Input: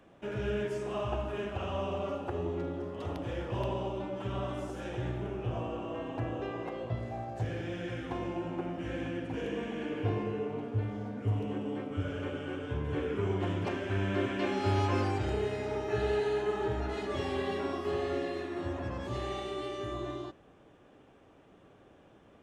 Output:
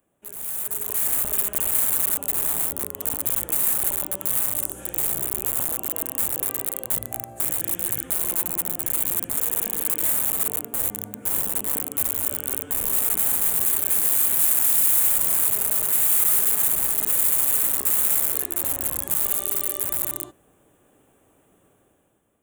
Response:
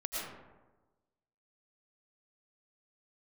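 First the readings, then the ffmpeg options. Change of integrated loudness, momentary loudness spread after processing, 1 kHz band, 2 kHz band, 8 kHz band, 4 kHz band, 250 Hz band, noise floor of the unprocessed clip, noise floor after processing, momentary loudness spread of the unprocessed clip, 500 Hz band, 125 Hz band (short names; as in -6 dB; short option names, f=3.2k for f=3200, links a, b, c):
+14.5 dB, 9 LU, -0.5 dB, +3.5 dB, n/a, +6.5 dB, -5.5 dB, -59 dBFS, -61 dBFS, 6 LU, -7.0 dB, -9.5 dB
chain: -af "aeval=exprs='(mod(33.5*val(0)+1,2)-1)/33.5':c=same,dynaudnorm=f=190:g=9:m=12.5dB,aexciter=amount=15.5:drive=7.1:freq=7.7k,volume=-14dB"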